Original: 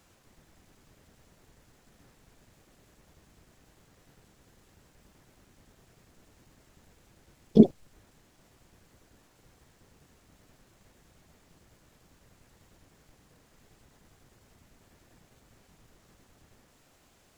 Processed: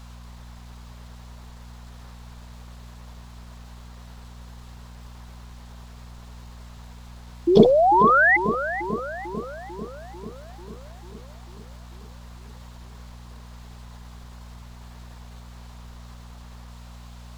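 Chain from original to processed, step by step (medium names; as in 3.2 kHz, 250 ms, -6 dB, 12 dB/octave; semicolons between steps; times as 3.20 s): graphic EQ 250/1000/4000 Hz -10/+11/+8 dB; painted sound rise, 7.47–8.37 s, 330–2100 Hz -24 dBFS; filtered feedback delay 444 ms, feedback 70%, low-pass 1.2 kHz, level -8.5 dB; mains buzz 60 Hz, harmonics 4, -50 dBFS -7 dB/octave; trim +7.5 dB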